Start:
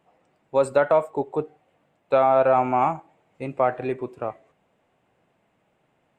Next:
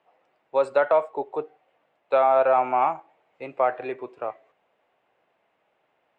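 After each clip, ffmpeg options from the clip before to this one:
-filter_complex "[0:a]acrossover=split=380 5300:gain=0.158 1 0.0891[s0][s1][s2];[s0][s1][s2]amix=inputs=3:normalize=0"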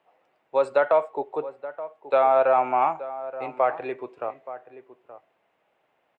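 -filter_complex "[0:a]asplit=2[s0][s1];[s1]adelay=874.6,volume=0.2,highshelf=f=4000:g=-19.7[s2];[s0][s2]amix=inputs=2:normalize=0"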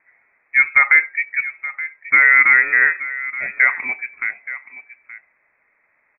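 -af "lowpass=f=2300:t=q:w=0.5098,lowpass=f=2300:t=q:w=0.6013,lowpass=f=2300:t=q:w=0.9,lowpass=f=2300:t=q:w=2.563,afreqshift=-2700,volume=2.24"

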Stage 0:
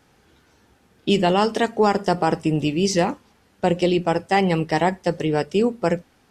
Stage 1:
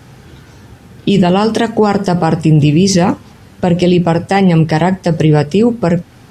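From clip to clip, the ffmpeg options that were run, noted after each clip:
-filter_complex "[0:a]equalizer=f=120:t=o:w=1.3:g=12.5,asplit=2[s0][s1];[s1]acompressor=threshold=0.0562:ratio=6,volume=1.33[s2];[s0][s2]amix=inputs=2:normalize=0,alimiter=level_in=2.82:limit=0.891:release=50:level=0:latency=1,volume=0.891"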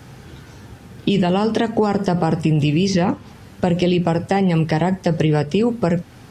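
-filter_complex "[0:a]acrossover=split=740|4800[s0][s1][s2];[s0]acompressor=threshold=0.224:ratio=4[s3];[s1]acompressor=threshold=0.0708:ratio=4[s4];[s2]acompressor=threshold=0.00708:ratio=4[s5];[s3][s4][s5]amix=inputs=3:normalize=0,volume=0.794"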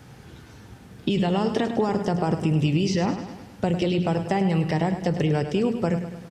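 -af "aecho=1:1:103|206|309|412|515|618:0.316|0.174|0.0957|0.0526|0.0289|0.0159,volume=0.501"

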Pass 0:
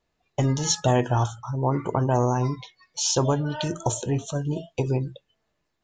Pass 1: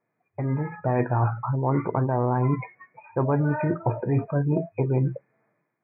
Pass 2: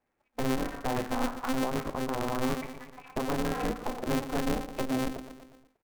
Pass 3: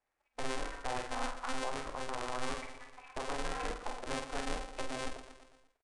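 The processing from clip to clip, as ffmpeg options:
-af "areverse,acompressor=threshold=0.0355:ratio=12,areverse,afftfilt=real='re*between(b*sr/4096,100,2500)':imag='im*between(b*sr/4096,100,2500)':win_size=4096:overlap=0.75,dynaudnorm=f=220:g=5:m=2.99"
-af "aecho=1:1:119|238|357|476|595:0.237|0.116|0.0569|0.0279|0.0137,alimiter=limit=0.112:level=0:latency=1:release=467,aeval=exprs='val(0)*sgn(sin(2*PI*130*n/s))':c=same,volume=0.794"
-filter_complex "[0:a]equalizer=f=190:w=0.57:g=-14.5,asplit=2[s0][s1];[s1]adelay=48,volume=0.447[s2];[s0][s2]amix=inputs=2:normalize=0,aresample=22050,aresample=44100,volume=0.708"

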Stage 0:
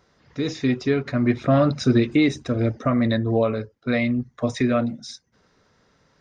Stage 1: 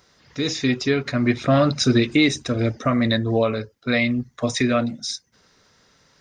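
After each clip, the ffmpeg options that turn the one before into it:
-af "highshelf=f=2300:g=11.5"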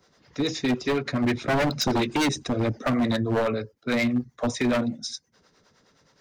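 -filter_complex "[0:a]acrossover=split=140|1100[s0][s1][s2];[s1]acontrast=31[s3];[s0][s3][s2]amix=inputs=3:normalize=0,acrossover=split=400[s4][s5];[s4]aeval=exprs='val(0)*(1-0.7/2+0.7/2*cos(2*PI*9.6*n/s))':c=same[s6];[s5]aeval=exprs='val(0)*(1-0.7/2-0.7/2*cos(2*PI*9.6*n/s))':c=same[s7];[s6][s7]amix=inputs=2:normalize=0,aeval=exprs='0.188*(abs(mod(val(0)/0.188+3,4)-2)-1)':c=same,volume=0.75"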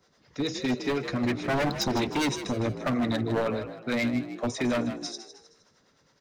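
-filter_complex "[0:a]asplit=5[s0][s1][s2][s3][s4];[s1]adelay=156,afreqshift=56,volume=0.282[s5];[s2]adelay=312,afreqshift=112,volume=0.116[s6];[s3]adelay=468,afreqshift=168,volume=0.0473[s7];[s4]adelay=624,afreqshift=224,volume=0.0195[s8];[s0][s5][s6][s7][s8]amix=inputs=5:normalize=0,volume=0.668"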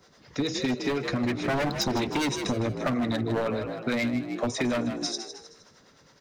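-af "acompressor=threshold=0.0224:ratio=4,volume=2.37"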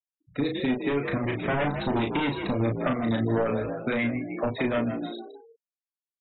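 -filter_complex "[0:a]aresample=8000,aresample=44100,afftfilt=real='re*gte(hypot(re,im),0.0141)':imag='im*gte(hypot(re,im),0.0141)':win_size=1024:overlap=0.75,asplit=2[s0][s1];[s1]adelay=35,volume=0.562[s2];[s0][s2]amix=inputs=2:normalize=0"

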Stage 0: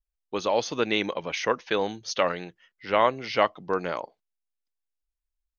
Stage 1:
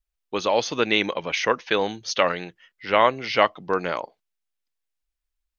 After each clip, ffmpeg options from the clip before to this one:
-af "equalizer=f=2500:t=o:w=1.9:g=3.5,volume=1.33"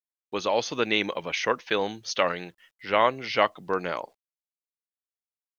-af "acrusher=bits=10:mix=0:aa=0.000001,volume=0.668"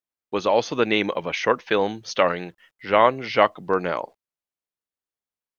-af "highshelf=f=2400:g=-8.5,volume=2"

